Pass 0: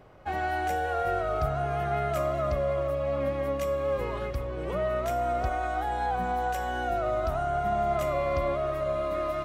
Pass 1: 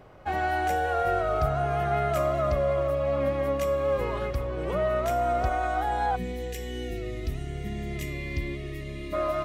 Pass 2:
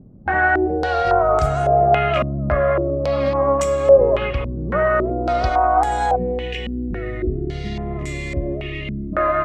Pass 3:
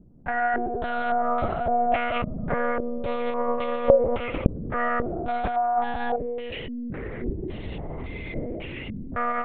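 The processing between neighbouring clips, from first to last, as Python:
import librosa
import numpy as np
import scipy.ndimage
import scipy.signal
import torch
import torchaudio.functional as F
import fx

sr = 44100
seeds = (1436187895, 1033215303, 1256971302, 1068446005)

y1 = fx.spec_box(x, sr, start_s=6.16, length_s=2.97, low_hz=500.0, high_hz=1700.0, gain_db=-23)
y1 = F.gain(torch.from_numpy(y1), 2.5).numpy()
y2 = fx.filter_held_lowpass(y1, sr, hz=3.6, low_hz=220.0, high_hz=7600.0)
y2 = F.gain(torch.from_numpy(y2), 6.5).numpy()
y3 = fx.lpc_monotone(y2, sr, seeds[0], pitch_hz=240.0, order=10)
y3 = F.gain(torch.from_numpy(y3), -7.5).numpy()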